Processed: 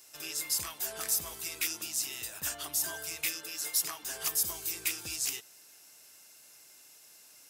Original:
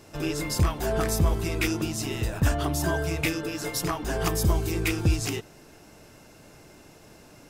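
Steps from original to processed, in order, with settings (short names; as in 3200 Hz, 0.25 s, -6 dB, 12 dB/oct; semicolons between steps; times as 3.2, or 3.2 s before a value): differentiator; in parallel at -7 dB: hard clip -32 dBFS, distortion -8 dB; on the sum: low shelf 120 Hz +6 dB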